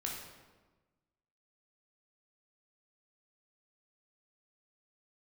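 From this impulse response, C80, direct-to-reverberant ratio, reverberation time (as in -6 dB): 5.0 dB, -2.0 dB, 1.3 s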